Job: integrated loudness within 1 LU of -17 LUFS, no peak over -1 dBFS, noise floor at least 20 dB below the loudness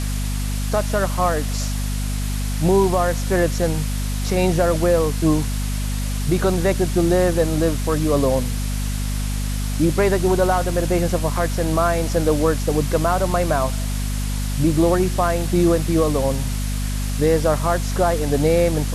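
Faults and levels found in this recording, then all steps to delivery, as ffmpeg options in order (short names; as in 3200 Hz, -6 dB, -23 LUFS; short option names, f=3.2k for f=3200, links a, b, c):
hum 50 Hz; harmonics up to 250 Hz; hum level -21 dBFS; noise floor -23 dBFS; noise floor target -41 dBFS; loudness -20.5 LUFS; peak -6.0 dBFS; loudness target -17.0 LUFS
-> -af "bandreject=f=50:t=h:w=6,bandreject=f=100:t=h:w=6,bandreject=f=150:t=h:w=6,bandreject=f=200:t=h:w=6,bandreject=f=250:t=h:w=6"
-af "afftdn=nr=18:nf=-23"
-af "volume=3.5dB"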